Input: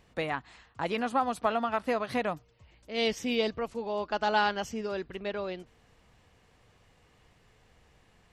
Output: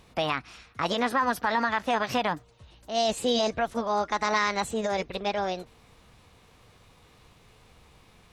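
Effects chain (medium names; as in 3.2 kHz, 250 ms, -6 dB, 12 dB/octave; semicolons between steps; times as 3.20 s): formant shift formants +5 st; peak limiter -21 dBFS, peak gain reduction 7.5 dB; trim +6 dB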